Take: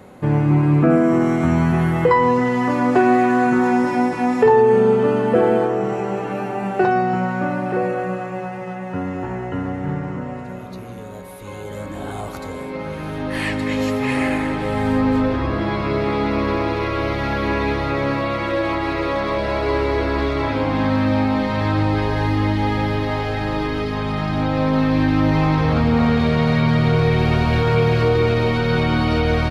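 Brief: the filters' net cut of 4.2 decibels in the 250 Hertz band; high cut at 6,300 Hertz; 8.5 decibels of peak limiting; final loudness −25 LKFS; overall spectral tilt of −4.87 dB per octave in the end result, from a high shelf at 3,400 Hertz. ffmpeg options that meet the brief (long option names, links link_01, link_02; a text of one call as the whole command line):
ffmpeg -i in.wav -af "lowpass=6300,equalizer=frequency=250:width_type=o:gain=-5.5,highshelf=frequency=3400:gain=7.5,volume=-3dB,alimiter=limit=-15.5dB:level=0:latency=1" out.wav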